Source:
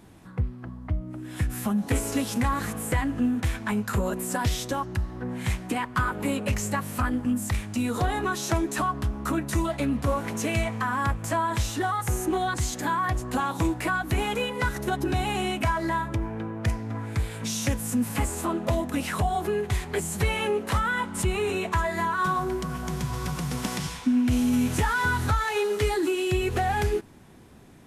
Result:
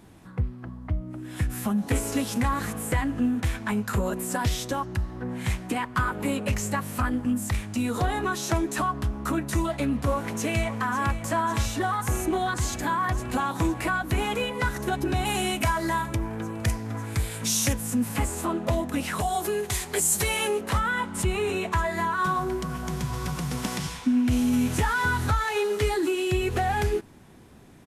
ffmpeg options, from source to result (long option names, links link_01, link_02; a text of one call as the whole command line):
ffmpeg -i in.wav -filter_complex "[0:a]asplit=2[link_01][link_02];[link_02]afade=type=in:start_time=10.14:duration=0.01,afade=type=out:start_time=11.21:duration=0.01,aecho=0:1:550|1100|1650|2200|2750|3300|3850|4400|4950|5500|6050|6600:0.251189|0.21351|0.181484|0.154261|0.131122|0.111454|0.0947357|0.0805253|0.0684465|0.0581795|0.0494526|0.0420347[link_03];[link_01][link_03]amix=inputs=2:normalize=0,asettb=1/sr,asplit=3[link_04][link_05][link_06];[link_04]atrim=end=15.254[link_07];[link_05]atrim=start=15.25:end=17.73,asetpts=PTS-STARTPTS,afade=type=in:duration=0.004:curve=qsin,afade=type=out:start_time=2.476:duration=0.004:curve=qsin,highshelf=frequency=5000:gain=11[link_08];[link_06]atrim=start=17.726[link_09];[link_07][link_08]acrossfade=duration=0.004:curve1=hsin:curve2=qsin[link_10];[link_10][link_09]acrossfade=duration=0.004:curve1=qsin:curve2=hsin,asettb=1/sr,asplit=3[link_11][link_12][link_13];[link_11]atrim=end=19.204[link_14];[link_12]atrim=start=19.2:end=20.61,asetpts=PTS-STARTPTS,afade=type=in:duration=0.004:curve=qsin,afade=type=out:start_time=1.406:duration=0.004:curve=qsin,bass=frequency=250:gain=-6,treble=frequency=4000:gain=12[link_15];[link_13]atrim=start=20.606[link_16];[link_14][link_15]acrossfade=duration=0.004:curve1=hsin:curve2=qsin[link_17];[link_17][link_16]acrossfade=duration=0.004:curve1=qsin:curve2=hsin" out.wav